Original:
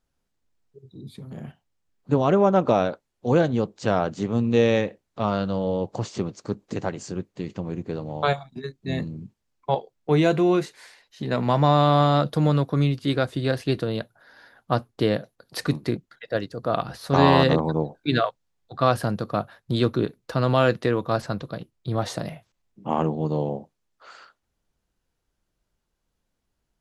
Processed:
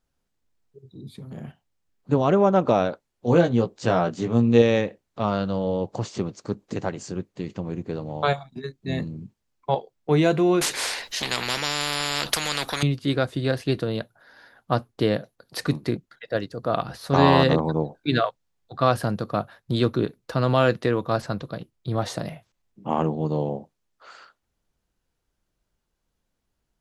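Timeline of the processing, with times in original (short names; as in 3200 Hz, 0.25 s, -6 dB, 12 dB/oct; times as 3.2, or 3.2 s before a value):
3.26–4.62 doubler 17 ms -5 dB
10.61–12.83 spectral compressor 10:1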